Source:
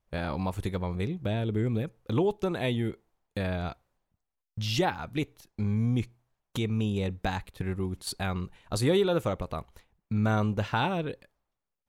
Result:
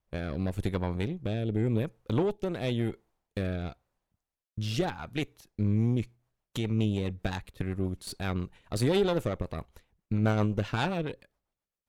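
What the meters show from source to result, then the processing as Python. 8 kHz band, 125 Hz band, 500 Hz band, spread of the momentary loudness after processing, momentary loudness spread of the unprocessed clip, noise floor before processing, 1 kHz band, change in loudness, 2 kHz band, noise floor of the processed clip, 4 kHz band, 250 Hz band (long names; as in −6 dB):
−3.5 dB, 0.0 dB, −1.5 dB, 11 LU, 11 LU, −85 dBFS, −4.5 dB, −1.0 dB, −2.5 dB, below −85 dBFS, −3.0 dB, 0.0 dB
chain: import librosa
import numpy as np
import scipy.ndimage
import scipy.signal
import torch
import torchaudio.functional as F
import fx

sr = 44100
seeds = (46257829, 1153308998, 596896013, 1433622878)

y = fx.cheby_harmonics(x, sr, harmonics=(4, 8), levels_db=(-17, -30), full_scale_db=-13.5)
y = fx.rotary_switch(y, sr, hz=0.9, then_hz=7.5, switch_at_s=5.47)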